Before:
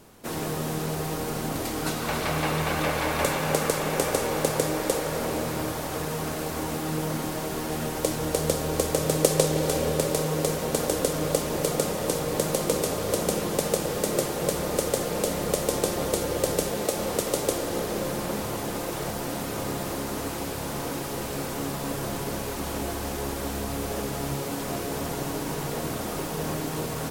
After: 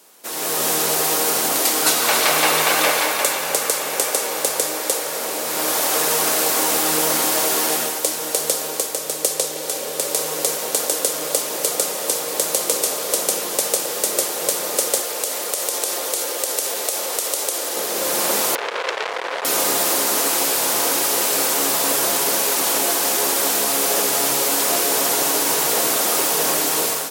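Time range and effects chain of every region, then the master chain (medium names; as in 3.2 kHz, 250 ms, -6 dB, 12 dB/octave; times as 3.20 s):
15.00–17.77 s: Bessel high-pass 330 Hz + compression 2.5:1, threshold -27 dBFS
18.55–19.45 s: low-pass 2.6 kHz + resonant low shelf 340 Hz -9 dB, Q 3 + transformer saturation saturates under 2.8 kHz
whole clip: high-pass 430 Hz 12 dB/octave; treble shelf 3.2 kHz +10.5 dB; level rider; trim -1 dB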